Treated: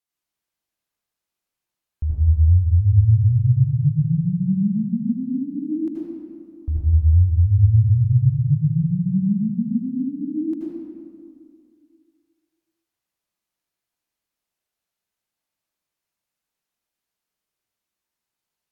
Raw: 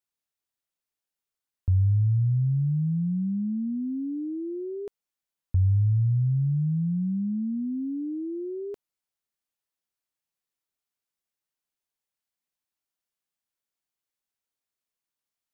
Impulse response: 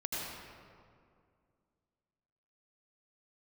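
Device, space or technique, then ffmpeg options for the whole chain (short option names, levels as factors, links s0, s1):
slowed and reverbed: -filter_complex "[0:a]asetrate=36603,aresample=44100[s0];[1:a]atrim=start_sample=2205[s1];[s0][s1]afir=irnorm=-1:irlink=0,volume=1.26"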